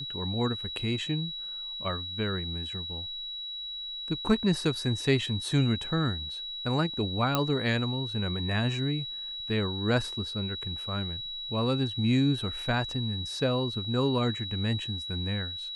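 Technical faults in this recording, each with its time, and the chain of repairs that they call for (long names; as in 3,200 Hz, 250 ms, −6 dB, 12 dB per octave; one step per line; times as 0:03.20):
whistle 3,900 Hz −35 dBFS
0:07.35: click −10 dBFS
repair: click removal
notch filter 3,900 Hz, Q 30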